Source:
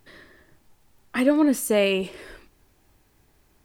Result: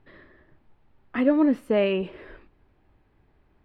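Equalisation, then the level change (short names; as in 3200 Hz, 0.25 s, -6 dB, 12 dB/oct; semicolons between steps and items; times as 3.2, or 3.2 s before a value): air absorption 430 m; 0.0 dB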